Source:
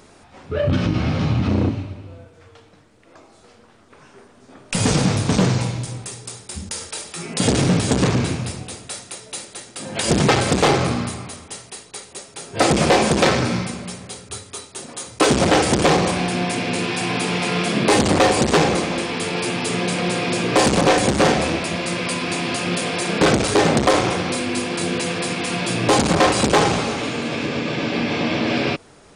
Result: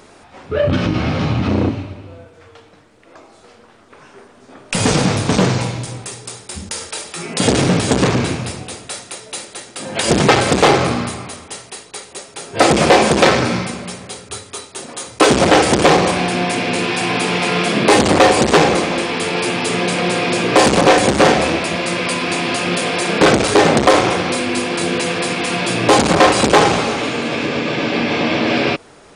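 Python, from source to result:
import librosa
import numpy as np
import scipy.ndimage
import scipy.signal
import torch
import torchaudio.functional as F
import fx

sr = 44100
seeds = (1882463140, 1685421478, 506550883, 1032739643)

y = fx.bass_treble(x, sr, bass_db=-5, treble_db=-3)
y = F.gain(torch.from_numpy(y), 5.5).numpy()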